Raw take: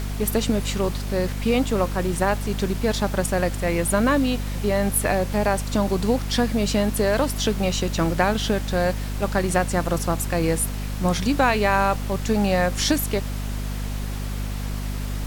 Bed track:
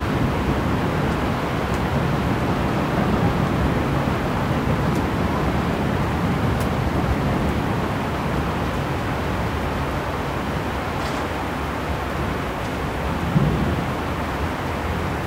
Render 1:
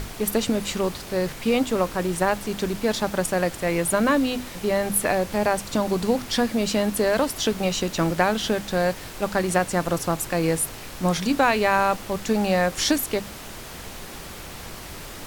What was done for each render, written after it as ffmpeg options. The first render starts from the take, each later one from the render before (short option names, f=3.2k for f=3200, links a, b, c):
-af "bandreject=f=50:t=h:w=6,bandreject=f=100:t=h:w=6,bandreject=f=150:t=h:w=6,bandreject=f=200:t=h:w=6,bandreject=f=250:t=h:w=6"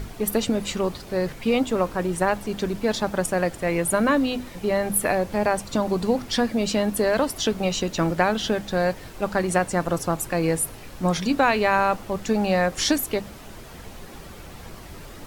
-af "afftdn=nr=8:nf=-38"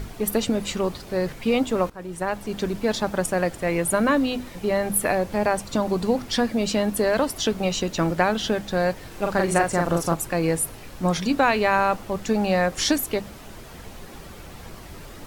-filter_complex "[0:a]asettb=1/sr,asplit=3[a][b][c];[a]atrim=end=9.074[d];[b]atrim=start=9.07:end=10.14,asetpts=PTS-STARTPTS,afade=t=in:d=0.004:c=qsin,afade=t=out:st=1.066:d=0.004:c=qsin,asplit=2[e][f];[f]adelay=41,volume=-3dB[g];[e][g]amix=inputs=2:normalize=0,atrim=end_sample=47187[h];[c]atrim=start=10.136[i];[d][h]acrossfade=d=0.004:c1=hsin:c2=qsin[j];[j][i]acrossfade=d=0.004:c1=qsin:c2=hsin,asplit=2[k][l];[k]atrim=end=1.9,asetpts=PTS-STARTPTS,afade=t=out:st=1.896:d=0.004:c=hsin:silence=0.149624[m];[l]atrim=start=1.9,asetpts=PTS-STARTPTS,afade=t=in:d=0.71:silence=0.149624[n];[m][n]concat=n=2:v=0:a=1"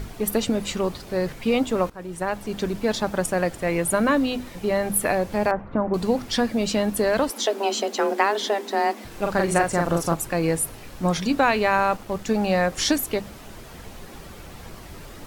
-filter_complex "[0:a]asettb=1/sr,asplit=3[a][b][c];[a]atrim=end=5.514[d];[b]atrim=start=5.51:end=5.94,asetpts=PTS-STARTPTS,afade=t=in:d=0.004:c=qsin,afade=t=out:st=0.426:d=0.004:c=qsin,lowpass=f=1.8k:w=0.5412,lowpass=f=1.8k:w=1.3066[e];[c]atrim=start=5.936[f];[d][e]acrossfade=d=0.004:c1=hsin:c2=qsin[g];[g][f]acrossfade=d=0.004:c1=qsin:c2=hsin,asettb=1/sr,asplit=3[h][i][j];[h]atrim=end=7.304[k];[i]atrim=start=7.3:end=9.05,asetpts=PTS-STARTPTS,afade=t=in:d=0.004:c=qsin,afade=t=out:st=1.746:d=0.004:c=qsin,afreqshift=200[l];[j]atrim=start=9.046[m];[k][l]acrossfade=d=0.004:c1=hsin:c2=qsin[n];[n][m]acrossfade=d=0.004:c1=qsin:c2=hsin,asettb=1/sr,asplit=3[o][p][q];[o]atrim=end=11.594[r];[p]atrim=start=11.59:end=12.44,asetpts=PTS-STARTPTS,afade=t=in:d=0.004:c=qsin,afade=t=out:st=0.846:d=0.004:c=qsin,aeval=exprs='sgn(val(0))*max(abs(val(0))-0.00355,0)':c=same[s];[q]atrim=start=12.436[t];[r][s]acrossfade=d=0.004:c1=hsin:c2=qsin[u];[u][t]acrossfade=d=0.004:c1=qsin:c2=hsin"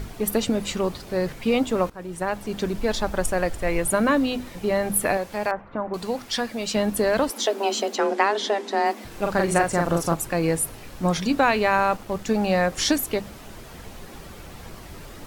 -filter_complex "[0:a]asplit=3[a][b][c];[a]afade=t=out:st=2.78:d=0.02[d];[b]asubboost=boost=7.5:cutoff=60,afade=t=in:st=2.78:d=0.02,afade=t=out:st=3.86:d=0.02[e];[c]afade=t=in:st=3.86:d=0.02[f];[d][e][f]amix=inputs=3:normalize=0,asettb=1/sr,asplit=3[g][h][i];[g]atrim=end=5.174[j];[h]atrim=start=5.17:end=6.75,asetpts=PTS-STARTPTS,afade=t=in:d=0.004:c=qsin,afade=t=out:st=1.576:d=0.004:c=qsin,lowshelf=f=460:g=-10[k];[i]atrim=start=6.746[l];[j][k]acrossfade=d=0.004:c1=hsin:c2=qsin[m];[m][l]acrossfade=d=0.004:c1=qsin:c2=hsin,asettb=1/sr,asplit=3[n][o][p];[n]atrim=end=7.964[q];[o]atrim=start=7.96:end=8.86,asetpts=PTS-STARTPTS,afade=t=in:d=0.004:c=qsin,afade=t=out:st=0.896:d=0.004:c=qsin,lowpass=8.3k[r];[p]atrim=start=8.856[s];[q][r]acrossfade=d=0.004:c1=hsin:c2=qsin[t];[t][s]acrossfade=d=0.004:c1=qsin:c2=hsin"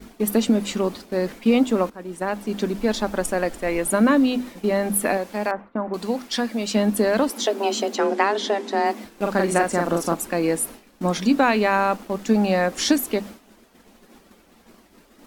-af "lowshelf=f=170:t=q:w=3:g=-8.5,agate=range=-33dB:threshold=-32dB:ratio=3:detection=peak"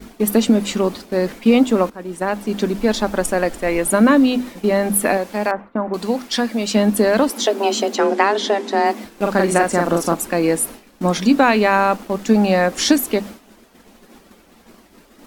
-af "volume=4.5dB,alimiter=limit=-2dB:level=0:latency=1"